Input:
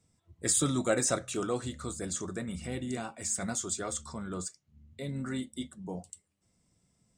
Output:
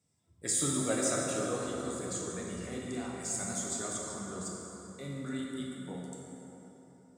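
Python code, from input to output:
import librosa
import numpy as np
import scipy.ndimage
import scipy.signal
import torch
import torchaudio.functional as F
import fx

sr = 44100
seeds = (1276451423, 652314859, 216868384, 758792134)

y = scipy.signal.sosfilt(scipy.signal.butter(2, 98.0, 'highpass', fs=sr, output='sos'), x)
y = fx.peak_eq(y, sr, hz=12000.0, db=2.5, octaves=1.7)
y = fx.rev_plate(y, sr, seeds[0], rt60_s=3.8, hf_ratio=0.55, predelay_ms=0, drr_db=-3.0)
y = y * 10.0 ** (-6.5 / 20.0)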